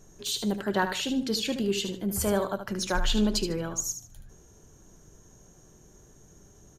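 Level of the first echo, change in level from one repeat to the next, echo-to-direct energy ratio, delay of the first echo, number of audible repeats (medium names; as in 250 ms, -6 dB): -9.0 dB, -12.0 dB, -8.5 dB, 75 ms, 3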